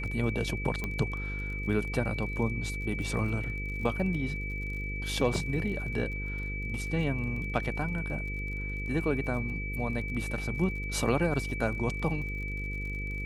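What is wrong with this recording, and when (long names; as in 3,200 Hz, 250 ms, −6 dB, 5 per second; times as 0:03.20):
mains buzz 50 Hz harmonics 10 −36 dBFS
surface crackle 32 per second −39 dBFS
whistle 2,300 Hz −37 dBFS
0:00.84: click −19 dBFS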